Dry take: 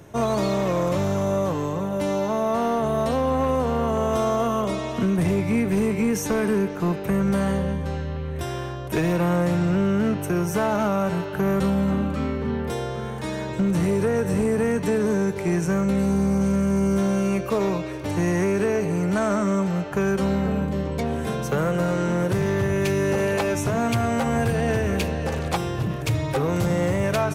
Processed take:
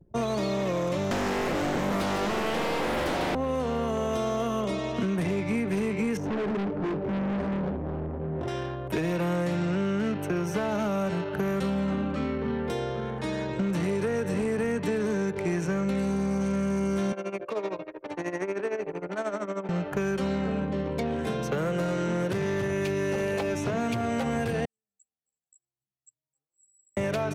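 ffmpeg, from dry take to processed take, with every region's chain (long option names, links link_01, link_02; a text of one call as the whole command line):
ffmpeg -i in.wav -filter_complex "[0:a]asettb=1/sr,asplit=3[link_01][link_02][link_03];[link_01]atrim=end=1.114[link_04];[link_02]atrim=start=1.11:end=3.35,asetpts=PTS-STARTPTS,afade=type=in:duration=0.004:curve=qsin,afade=type=out:start_time=2.236:duration=0.004:curve=qsin,equalizer=frequency=750:width=0.63:gain=-6.5,aeval=exprs='0.133*sin(PI/2*4.47*val(0)/0.133)':channel_layout=same,aecho=1:1:148:0.531,atrim=end_sample=98784[link_05];[link_03]atrim=start=3.346[link_06];[link_04][link_05]acrossfade=duration=0.004:curve1=hsin:curve2=qsin[link_07];[link_07][link_06]acrossfade=duration=0.004:curve1=qsin:curve2=hsin,asettb=1/sr,asplit=3[link_08][link_09][link_10];[link_08]atrim=end=6.174[link_11];[link_09]atrim=start=6.17:end=8.48,asetpts=PTS-STARTPTS,afade=type=in:duration=0.004:curve=qsin,afade=type=out:start_time=2.306:duration=0.004:curve=qsin,tiltshelf=frequency=1100:gain=9,flanger=delay=20:depth=6.3:speed=1.4,asoftclip=type=hard:threshold=-24.5dB[link_12];[link_10]atrim=start=8.476[link_13];[link_11][link_12]acrossfade=duration=0.004:curve1=hsin:curve2=qsin[link_14];[link_14][link_13]acrossfade=duration=0.004:curve1=qsin:curve2=hsin,asettb=1/sr,asplit=3[link_15][link_16][link_17];[link_15]atrim=end=17.124[link_18];[link_16]atrim=start=17.12:end=19.69,asetpts=PTS-STARTPTS,afade=type=in:duration=0.004:curve=qsin,afade=type=out:start_time=2.566:duration=0.004:curve=qsin,highpass=420,tremolo=f=13:d=0.66,highshelf=frequency=4500:gain=-7[link_19];[link_17]atrim=start=19.686[link_20];[link_18][link_19]acrossfade=duration=0.004:curve1=hsin:curve2=qsin[link_21];[link_21][link_20]acrossfade=duration=0.004:curve1=qsin:curve2=hsin,asettb=1/sr,asplit=3[link_22][link_23][link_24];[link_22]atrim=end=24.654[link_25];[link_23]atrim=start=24.65:end=26.97,asetpts=PTS-STARTPTS,afade=type=in:duration=0.004:curve=qsin,afade=type=out:start_time=2.316:duration=0.004:curve=qsin,bandpass=frequency=7700:width_type=q:width=15,asplit=2[link_26][link_27];[link_27]adelay=14,volume=-2dB[link_28];[link_26][link_28]amix=inputs=2:normalize=0,atrim=end_sample=102312[link_29];[link_24]atrim=start=26.966[link_30];[link_25][link_29]acrossfade=duration=0.004:curve1=hsin:curve2=qsin[link_31];[link_31][link_30]acrossfade=duration=0.004:curve1=qsin:curve2=hsin,anlmdn=2.51,acrossover=split=170|740|1600|5200[link_32][link_33][link_34][link_35][link_36];[link_32]acompressor=threshold=-40dB:ratio=4[link_37];[link_33]acompressor=threshold=-27dB:ratio=4[link_38];[link_34]acompressor=threshold=-44dB:ratio=4[link_39];[link_35]acompressor=threshold=-38dB:ratio=4[link_40];[link_36]acompressor=threshold=-52dB:ratio=4[link_41];[link_37][link_38][link_39][link_40][link_41]amix=inputs=5:normalize=0" out.wav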